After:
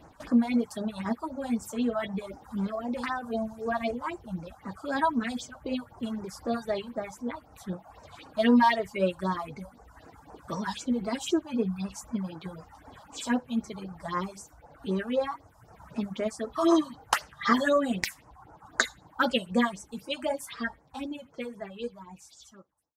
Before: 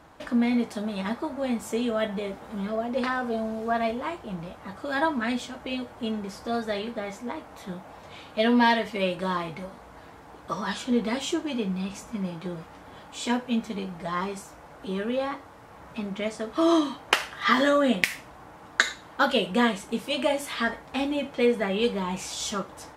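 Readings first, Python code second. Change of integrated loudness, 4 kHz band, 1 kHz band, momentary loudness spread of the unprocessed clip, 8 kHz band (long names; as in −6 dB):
−2.5 dB, −6.0 dB, −2.0 dB, 17 LU, −3.0 dB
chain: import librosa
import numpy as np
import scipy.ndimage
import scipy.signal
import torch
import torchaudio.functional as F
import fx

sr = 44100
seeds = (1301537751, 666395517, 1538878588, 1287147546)

y = fx.fade_out_tail(x, sr, length_s=4.23)
y = fx.dereverb_blind(y, sr, rt60_s=1.2)
y = fx.phaser_stages(y, sr, stages=4, low_hz=350.0, high_hz=3500.0, hz=3.9, feedback_pct=25)
y = y * 10.0 ** (1.5 / 20.0)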